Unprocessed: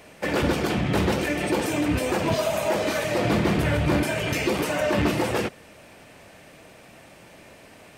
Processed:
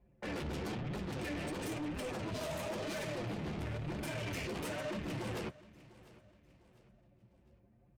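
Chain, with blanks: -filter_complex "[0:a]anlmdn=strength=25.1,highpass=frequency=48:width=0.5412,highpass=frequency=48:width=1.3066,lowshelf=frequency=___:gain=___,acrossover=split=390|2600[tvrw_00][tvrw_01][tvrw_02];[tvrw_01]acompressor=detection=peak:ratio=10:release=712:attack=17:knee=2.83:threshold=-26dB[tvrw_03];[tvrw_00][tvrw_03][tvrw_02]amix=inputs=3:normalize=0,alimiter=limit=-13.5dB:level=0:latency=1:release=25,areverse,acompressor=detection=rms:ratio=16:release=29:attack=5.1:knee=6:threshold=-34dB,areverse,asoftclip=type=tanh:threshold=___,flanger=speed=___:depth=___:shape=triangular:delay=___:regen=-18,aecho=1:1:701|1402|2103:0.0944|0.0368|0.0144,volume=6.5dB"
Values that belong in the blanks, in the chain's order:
170, 6, -40dB, 1, 9, 4.5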